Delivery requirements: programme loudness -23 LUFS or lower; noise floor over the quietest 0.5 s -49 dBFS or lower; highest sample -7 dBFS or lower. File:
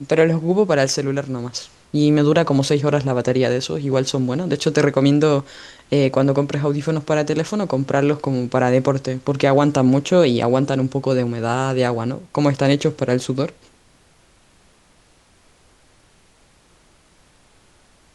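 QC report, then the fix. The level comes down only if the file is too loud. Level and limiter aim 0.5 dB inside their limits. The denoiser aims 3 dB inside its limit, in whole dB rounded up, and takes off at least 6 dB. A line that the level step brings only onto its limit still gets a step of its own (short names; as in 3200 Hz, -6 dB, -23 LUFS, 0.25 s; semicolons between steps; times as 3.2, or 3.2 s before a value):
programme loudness -18.5 LUFS: fail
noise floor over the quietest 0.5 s -55 dBFS: OK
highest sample -3.5 dBFS: fail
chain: gain -5 dB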